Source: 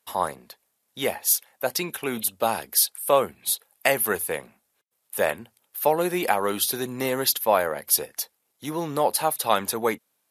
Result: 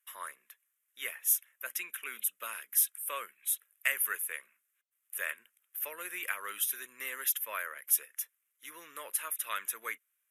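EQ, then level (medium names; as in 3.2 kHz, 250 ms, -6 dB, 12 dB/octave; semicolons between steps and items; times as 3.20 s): high-pass 1.2 kHz 12 dB/octave; static phaser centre 1.9 kHz, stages 4; -4.5 dB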